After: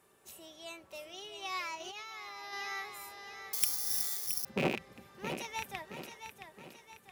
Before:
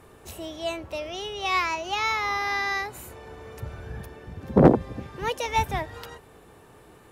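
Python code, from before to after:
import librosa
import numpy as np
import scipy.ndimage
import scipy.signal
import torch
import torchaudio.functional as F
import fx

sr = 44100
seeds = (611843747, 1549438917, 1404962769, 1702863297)

p1 = fx.rattle_buzz(x, sr, strikes_db=-25.0, level_db=-11.0)
p2 = fx.highpass(p1, sr, hz=140.0, slope=6)
p3 = fx.low_shelf(p2, sr, hz=280.0, db=6.0)
p4 = p3 + 0.34 * np.pad(p3, (int(5.2 * sr / 1000.0), 0))[:len(p3)]
p5 = p4 + fx.echo_feedback(p4, sr, ms=670, feedback_pct=46, wet_db=-8.5, dry=0)
p6 = fx.over_compress(p5, sr, threshold_db=-31.0, ratio=-1.0, at=(1.8, 2.53))
p7 = fx.resample_bad(p6, sr, factor=8, down='none', up='zero_stuff', at=(3.53, 4.45))
p8 = fx.tilt_eq(p7, sr, slope=2.5)
y = F.gain(torch.from_numpy(p8), -15.5).numpy()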